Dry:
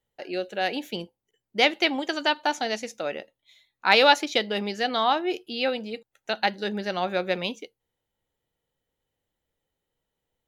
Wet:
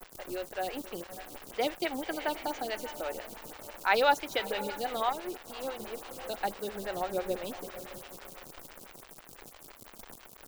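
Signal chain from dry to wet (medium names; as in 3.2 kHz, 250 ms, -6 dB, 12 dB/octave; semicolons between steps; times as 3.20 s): high-pass 220 Hz 12 dB/octave; added noise pink -42 dBFS; 6.84–7.45 s: tilt shelf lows +4 dB, about 730 Hz; echo that smears into a reverb 561 ms, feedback 46%, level -13 dB; 5.09–5.80 s: valve stage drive 18 dB, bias 0.75; bit crusher 6-bit; lamp-driven phase shifter 6 Hz; trim -5 dB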